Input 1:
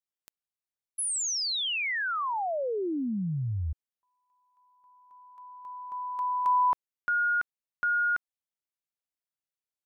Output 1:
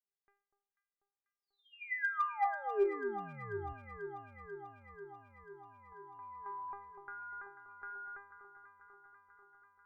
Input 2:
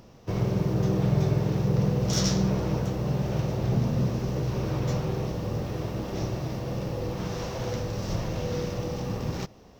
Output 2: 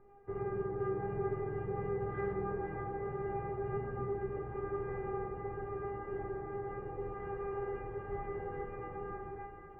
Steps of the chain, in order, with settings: fade out at the end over 0.86 s; steep low-pass 2 kHz 48 dB/octave; feedback comb 400 Hz, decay 0.41 s, harmonics all, mix 100%; in parallel at -4 dB: one-sided clip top -40 dBFS, bottom -37.5 dBFS; on the sum: echo whose repeats swap between lows and highs 245 ms, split 1.2 kHz, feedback 84%, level -8 dB; trim +8 dB

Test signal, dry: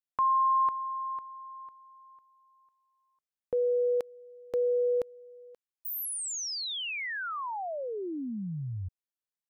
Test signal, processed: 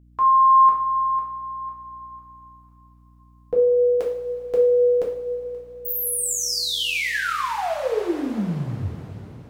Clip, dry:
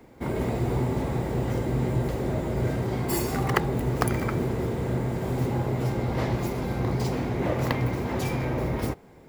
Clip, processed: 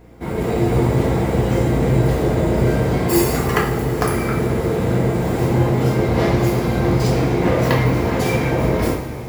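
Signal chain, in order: level rider gain up to 5 dB; two-slope reverb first 0.5 s, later 4.4 s, from -16 dB, DRR -4 dB; hum 60 Hz, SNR 30 dB

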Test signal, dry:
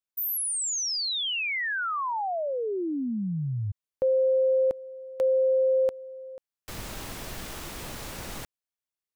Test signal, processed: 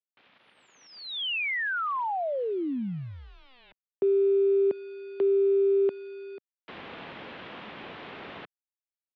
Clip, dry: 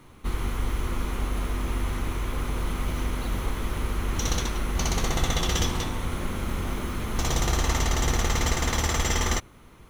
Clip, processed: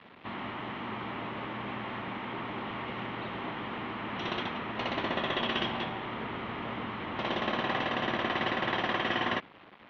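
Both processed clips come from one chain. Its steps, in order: word length cut 8-bit, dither none; mistuned SSB -130 Hz 310–3500 Hz

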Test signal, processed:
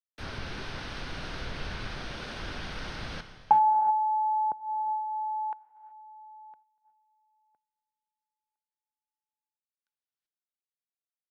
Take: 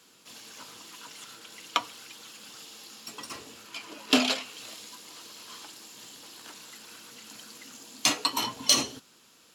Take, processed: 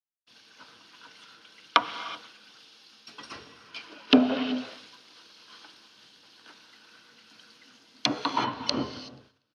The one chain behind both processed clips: low-pass that closes with the level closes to 600 Hz, closed at -21 dBFS; peaking EQ 1.5 kHz +8 dB 0.22 oct; gated-style reverb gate 400 ms rising, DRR 8.5 dB; gate -52 dBFS, range -29 dB; reverse; upward compressor, threshold -51 dBFS; reverse; Savitzky-Golay filter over 15 samples; on a send: feedback delay 241 ms, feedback 41%, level -23 dB; on the sum: three bands expanded up and down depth 70%

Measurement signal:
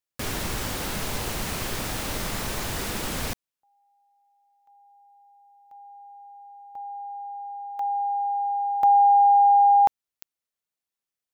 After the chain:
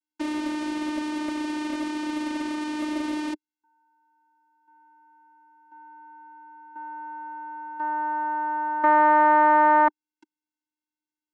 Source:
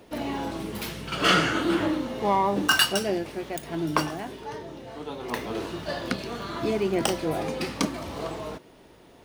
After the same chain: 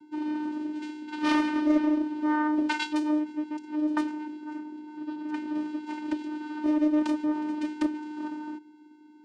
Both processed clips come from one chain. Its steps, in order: vocoder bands 8, square 303 Hz; loudspeaker Doppler distortion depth 0.33 ms

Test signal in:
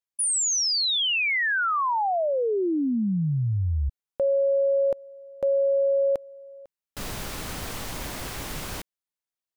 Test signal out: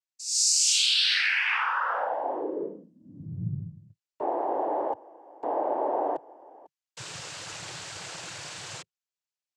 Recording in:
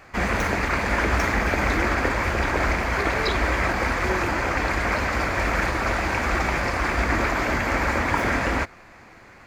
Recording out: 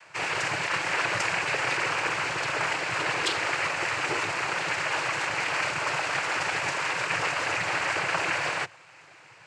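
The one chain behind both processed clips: FFT filter 130 Hz 0 dB, 250 Hz -30 dB, 370 Hz -1 dB, 4.2 kHz +8 dB; noise-vocoded speech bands 8; trim -6.5 dB

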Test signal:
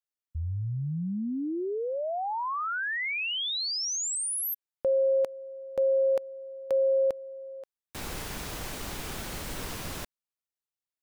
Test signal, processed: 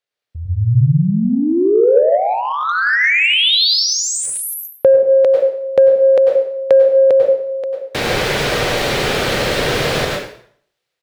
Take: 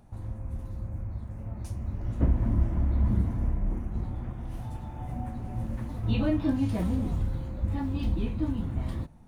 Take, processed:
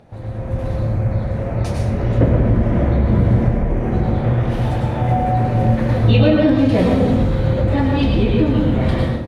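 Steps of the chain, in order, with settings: plate-style reverb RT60 0.58 s, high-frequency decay 0.85×, pre-delay 85 ms, DRR 0.5 dB; overdrive pedal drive 16 dB, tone 1.8 kHz, clips at -9 dBFS; on a send: delay 111 ms -21 dB; on the sum: compression 2.5:1, threshold -28 dBFS; graphic EQ 125/500/1000/2000/4000 Hz +10/+10/-5/+4/+6 dB; level rider gain up to 9 dB; trim +1.5 dB

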